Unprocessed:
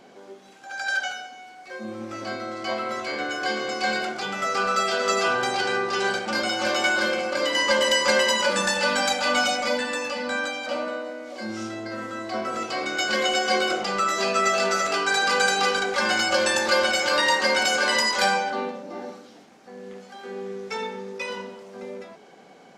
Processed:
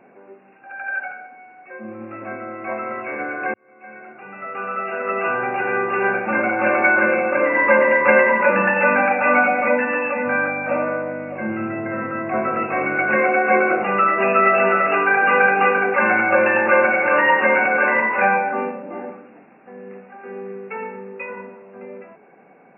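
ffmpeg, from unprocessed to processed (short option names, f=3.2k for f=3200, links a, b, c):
-filter_complex "[0:a]asettb=1/sr,asplit=3[a][b][c];[a]atrim=end=10.264[d];[b]atrim=start=10.26:end=13.17,asetpts=PTS-STARTPTS,afade=t=in:d=0.004:c=qsin,afade=t=out:st=2.906:d=0.004:c=qsin,aeval=exprs='val(0)+0.0112*(sin(2*PI*50*n/s)+sin(2*PI*2*50*n/s)/2+sin(2*PI*3*50*n/s)/3+sin(2*PI*4*50*n/s)/4+sin(2*PI*5*50*n/s)/5)':c=same[e];[c]atrim=start=13.166[f];[d][e]acrossfade=d=0.004:c1=hsin:c2=qsin[g];[g][f]acrossfade=d=0.004:c1=qsin:c2=hsin,asplit=2[h][i];[h]atrim=end=3.54,asetpts=PTS-STARTPTS,afade=t=out:st=3.536:d=0.004:c=hsin[j];[i]atrim=start=3.54,asetpts=PTS-STARTPTS,afade=t=in:d=2.95[k];[j][k]concat=n=2:v=0:a=1,afftfilt=real='re*between(b*sr/4096,100,2800)':imag='im*between(b*sr/4096,100,2800)':win_size=4096:overlap=0.75,dynaudnorm=f=420:g=21:m=11.5dB"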